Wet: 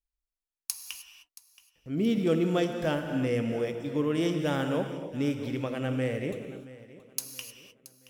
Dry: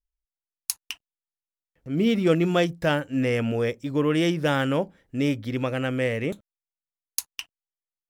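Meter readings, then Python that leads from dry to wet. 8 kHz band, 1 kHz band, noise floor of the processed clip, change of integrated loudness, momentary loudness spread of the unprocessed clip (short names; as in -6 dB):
-4.0 dB, -6.0 dB, under -85 dBFS, -5.0 dB, 13 LU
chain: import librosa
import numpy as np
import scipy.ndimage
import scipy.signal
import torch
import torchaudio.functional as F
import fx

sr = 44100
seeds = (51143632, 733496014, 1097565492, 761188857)

y = fx.dynamic_eq(x, sr, hz=1900.0, q=0.73, threshold_db=-38.0, ratio=4.0, max_db=-5)
y = fx.echo_feedback(y, sr, ms=675, feedback_pct=37, wet_db=-18.0)
y = fx.rev_gated(y, sr, seeds[0], gate_ms=330, shape='flat', drr_db=5.5)
y = y * 10.0 ** (-5.0 / 20.0)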